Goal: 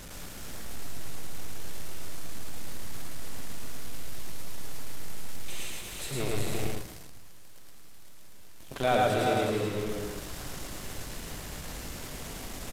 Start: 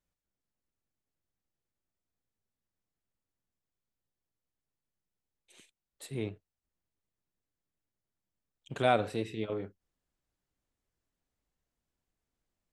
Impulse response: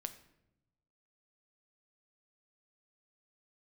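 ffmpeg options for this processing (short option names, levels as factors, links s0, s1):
-filter_complex "[0:a]aeval=exprs='val(0)+0.5*0.0178*sgn(val(0))':c=same,aecho=1:1:130|271|361|425:0.335|0.422|0.473|0.316,asettb=1/sr,asplit=3[s0][s1][s2];[s0]atrim=end=6.204[s3];[s1]atrim=start=6.2:end=8.84,asetpts=PTS-STARTPTS,afade=t=in:d=0.004:c=qsin,afade=t=out:st=2.636:d=0.004:c=qsin,aeval=exprs='0.15*(cos(1*acos(clip(val(0)/0.15,-1,1)))-cos(1*PI/2))+0.00531*(cos(7*acos(clip(val(0)/0.15,-1,1)))-cos(7*PI/2))+0.0266*(cos(8*acos(clip(val(0)/0.15,-1,1)))-cos(8*PI/2))':c=same[s4];[s2]atrim=start=8.836[s5];[s3][s4]acrossfade=d=0.004:c1=hsin:c2=qsin[s6];[s6][s5]acrossfade=d=0.004:c1=qsin:c2=hsin,aresample=32000,aresample=44100,asplit=2[s7][s8];[1:a]atrim=start_sample=2205,adelay=110[s9];[s8][s9]afir=irnorm=-1:irlink=0,volume=1.26[s10];[s7][s10]amix=inputs=2:normalize=0,volume=0.841"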